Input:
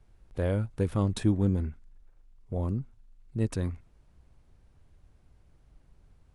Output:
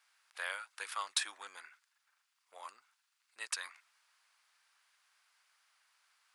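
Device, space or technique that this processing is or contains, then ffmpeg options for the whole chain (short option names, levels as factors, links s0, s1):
headphones lying on a table: -af "highpass=f=1200:w=0.5412,highpass=f=1200:w=1.3066,equalizer=f=4800:t=o:w=0.21:g=4.5,volume=2.11"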